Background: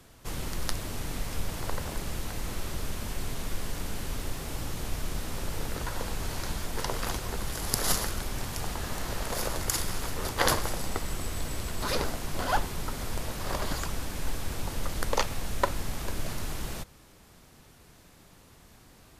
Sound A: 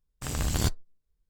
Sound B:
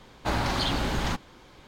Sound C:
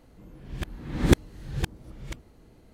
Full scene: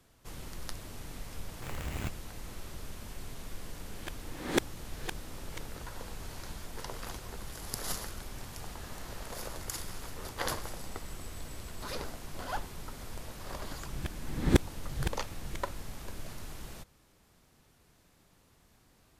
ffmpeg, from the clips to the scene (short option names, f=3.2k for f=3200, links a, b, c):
-filter_complex "[3:a]asplit=2[a][b];[0:a]volume=-9.5dB[c];[1:a]acrusher=samples=9:mix=1:aa=0.000001[d];[a]highpass=370[e];[d]atrim=end=1.29,asetpts=PTS-STARTPTS,volume=-10.5dB,afade=t=in:d=0.004:c=hsin,afade=t=out:st=1.286:d=0.004:c=hsin,adelay=1400[f];[e]atrim=end=2.73,asetpts=PTS-STARTPTS,volume=-3.5dB,afade=t=in:d=0.004:c=hsin,afade=t=out:st=2.726:d=0.004:c=hsin,adelay=152145S[g];[b]atrim=end=2.73,asetpts=PTS-STARTPTS,volume=-4.5dB,afade=t=in:d=0.004:c=hsin,afade=t=out:st=2.726:d=0.004:c=hsin,adelay=13430[h];[c][f][g][h]amix=inputs=4:normalize=0"